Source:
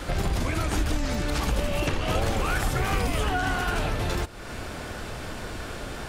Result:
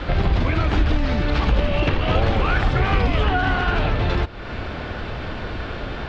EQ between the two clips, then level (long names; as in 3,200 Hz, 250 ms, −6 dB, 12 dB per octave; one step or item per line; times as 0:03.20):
low-pass filter 4,000 Hz 24 dB per octave
parametric band 65 Hz +3 dB 2 octaves
+5.5 dB